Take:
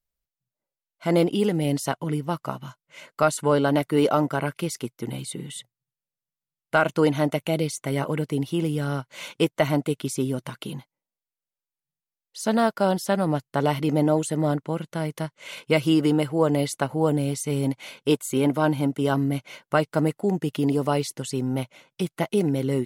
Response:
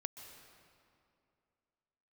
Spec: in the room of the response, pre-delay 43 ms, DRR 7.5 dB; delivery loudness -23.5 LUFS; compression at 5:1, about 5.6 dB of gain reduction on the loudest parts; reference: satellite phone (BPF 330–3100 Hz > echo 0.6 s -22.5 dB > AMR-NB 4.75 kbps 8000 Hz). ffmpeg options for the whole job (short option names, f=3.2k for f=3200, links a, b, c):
-filter_complex "[0:a]acompressor=threshold=-21dB:ratio=5,asplit=2[a][b];[1:a]atrim=start_sample=2205,adelay=43[c];[b][c]afir=irnorm=-1:irlink=0,volume=-5dB[d];[a][d]amix=inputs=2:normalize=0,highpass=330,lowpass=3.1k,aecho=1:1:600:0.075,volume=8dB" -ar 8000 -c:a libopencore_amrnb -b:a 4750